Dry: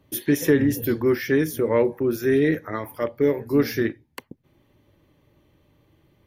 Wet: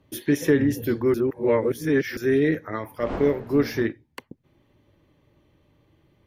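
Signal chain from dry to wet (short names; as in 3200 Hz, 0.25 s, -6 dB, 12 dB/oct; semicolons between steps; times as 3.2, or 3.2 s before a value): 2.98–3.85 wind noise 620 Hz -29 dBFS; high shelf 11000 Hz -11.5 dB; 1.14–2.17 reverse; gain -1 dB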